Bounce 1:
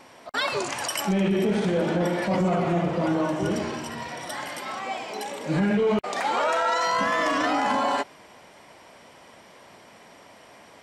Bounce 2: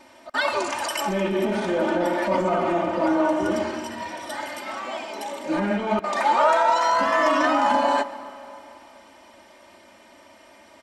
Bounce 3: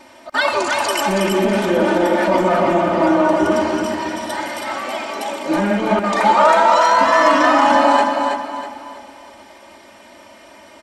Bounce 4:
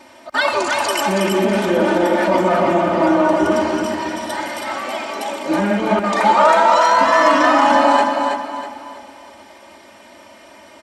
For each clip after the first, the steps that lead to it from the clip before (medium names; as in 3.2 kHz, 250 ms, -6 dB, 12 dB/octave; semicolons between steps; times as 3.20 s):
dynamic bell 960 Hz, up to +7 dB, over -37 dBFS, Q 0.78; comb 3.3 ms, depth 89%; reverberation RT60 3.2 s, pre-delay 55 ms, DRR 15 dB; trim -3.5 dB
feedback delay 323 ms, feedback 36%, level -5 dB; trim +6 dB
high-pass 46 Hz